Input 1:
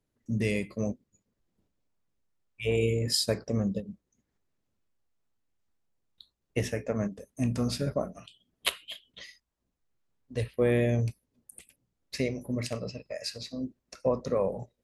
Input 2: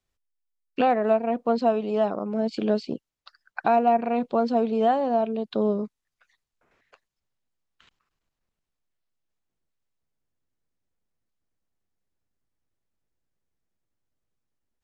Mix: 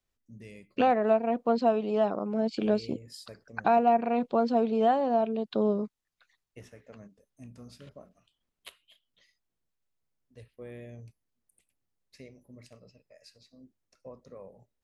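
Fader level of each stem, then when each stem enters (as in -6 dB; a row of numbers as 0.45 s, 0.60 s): -19.5 dB, -2.5 dB; 0.00 s, 0.00 s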